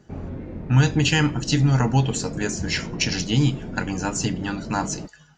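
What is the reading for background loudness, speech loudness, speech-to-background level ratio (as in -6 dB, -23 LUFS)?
-34.5 LUFS, -22.5 LUFS, 12.0 dB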